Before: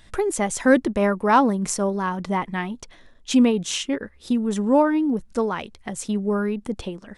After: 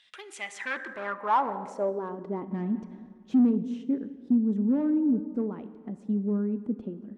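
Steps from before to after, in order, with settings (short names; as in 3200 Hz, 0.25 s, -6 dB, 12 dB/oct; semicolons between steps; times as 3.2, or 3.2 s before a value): on a send at -12.5 dB: reverb RT60 1.9 s, pre-delay 30 ms; on the sum: overloaded stage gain 17 dB; 2.51–3.51 sample leveller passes 2; band-pass sweep 3100 Hz -> 250 Hz, 0.22–2.62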